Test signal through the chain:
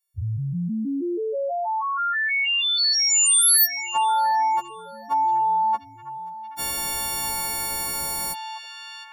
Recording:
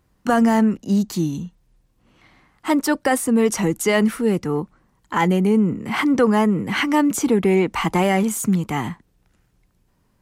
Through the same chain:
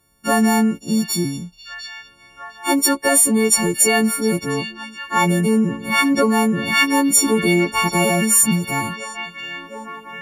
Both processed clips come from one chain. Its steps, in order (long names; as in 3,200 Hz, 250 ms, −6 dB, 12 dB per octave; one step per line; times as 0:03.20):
every partial snapped to a pitch grid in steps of 4 semitones
echo through a band-pass that steps 705 ms, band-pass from 3,500 Hz, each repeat −0.7 octaves, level −5.5 dB